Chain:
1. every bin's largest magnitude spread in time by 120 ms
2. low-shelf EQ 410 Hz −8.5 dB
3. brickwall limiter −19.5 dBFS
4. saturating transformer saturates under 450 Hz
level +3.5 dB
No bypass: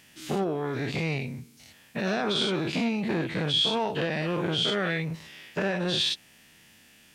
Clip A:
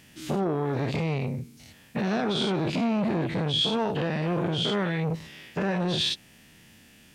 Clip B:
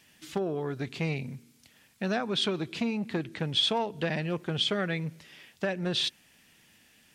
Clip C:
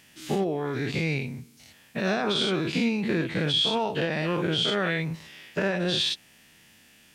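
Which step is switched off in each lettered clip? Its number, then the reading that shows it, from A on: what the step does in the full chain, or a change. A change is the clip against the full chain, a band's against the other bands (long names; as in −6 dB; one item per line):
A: 2, 2 kHz band −4.0 dB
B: 1, change in crest factor +3.0 dB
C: 4, change in integrated loudness +1.0 LU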